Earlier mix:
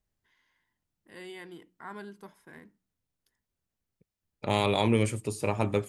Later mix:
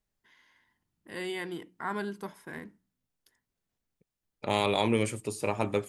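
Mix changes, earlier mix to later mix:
first voice +8.5 dB; second voice: add bell 74 Hz -7 dB 2.5 oct

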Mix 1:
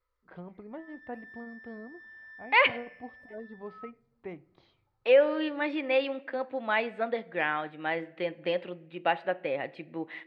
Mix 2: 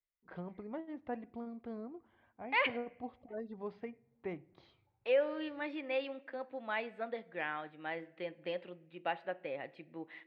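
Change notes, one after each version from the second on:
second voice -9.5 dB; background: muted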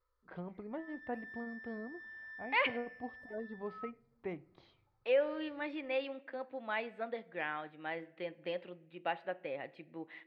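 background: unmuted

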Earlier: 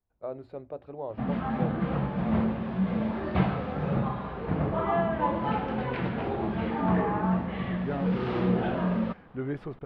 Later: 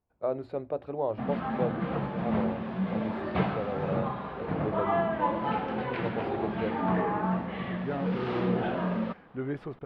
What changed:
first voice +6.5 dB; background: add low shelf 150 Hz -5.5 dB; master: add low shelf 78 Hz -8 dB

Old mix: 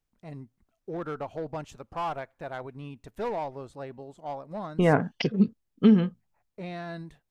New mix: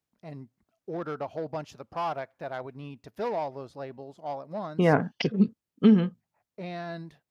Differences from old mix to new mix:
first voice: add thirty-one-band EQ 630 Hz +3 dB, 5000 Hz +7 dB, 8000 Hz -10 dB; master: add HPF 100 Hz

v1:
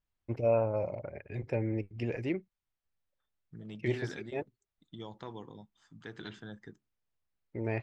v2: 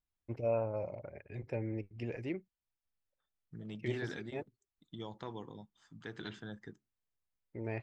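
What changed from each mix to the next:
first voice -5.5 dB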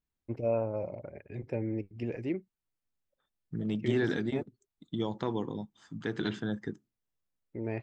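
second voice +7.5 dB; master: add bell 260 Hz +6.5 dB 2 oct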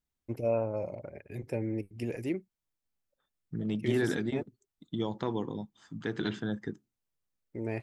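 first voice: remove air absorption 180 m

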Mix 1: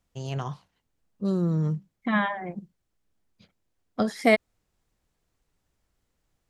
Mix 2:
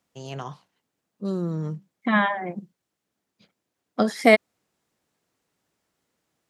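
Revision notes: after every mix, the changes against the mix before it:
second voice +4.5 dB; master: add HPF 180 Hz 12 dB/oct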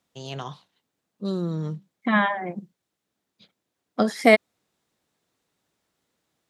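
first voice: add bell 3700 Hz +11 dB 0.45 oct

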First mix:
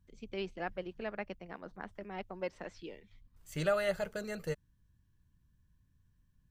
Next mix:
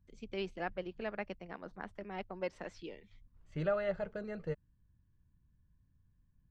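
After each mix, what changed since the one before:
second voice: add tape spacing loss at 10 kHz 34 dB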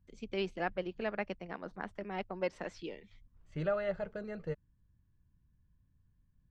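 first voice +3.5 dB

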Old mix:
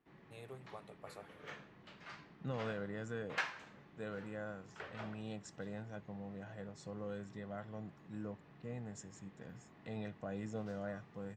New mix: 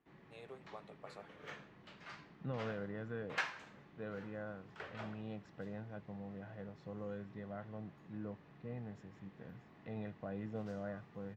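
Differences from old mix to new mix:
first voice: add BPF 240–5800 Hz; second voice: add air absorption 310 m

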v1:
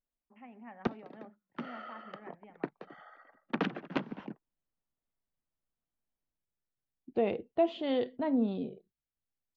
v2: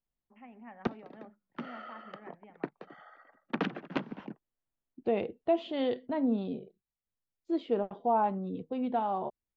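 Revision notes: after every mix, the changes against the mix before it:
second voice: entry -2.10 s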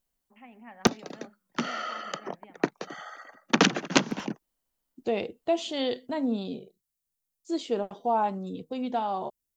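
background +9.0 dB; master: remove air absorption 450 m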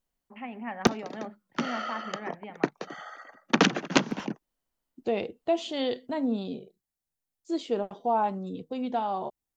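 first voice +11.5 dB; master: add high shelf 5400 Hz -6.5 dB

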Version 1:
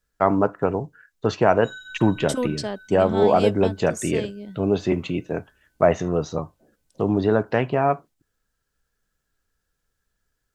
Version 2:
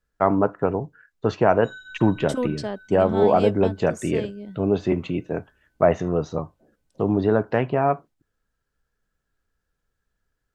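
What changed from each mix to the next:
master: add high shelf 3400 Hz -9 dB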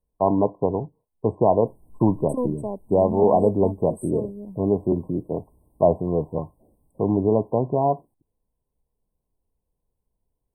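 background +10.5 dB; master: add brick-wall FIR band-stop 1100–8000 Hz

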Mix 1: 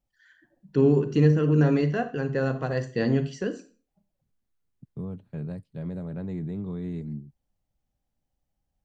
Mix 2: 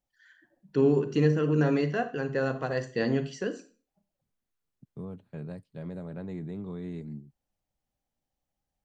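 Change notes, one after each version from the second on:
master: add low shelf 210 Hz -9 dB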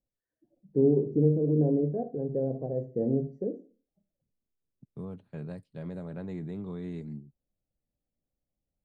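first voice: add inverse Chebyshev low-pass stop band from 1200 Hz, stop band 40 dB

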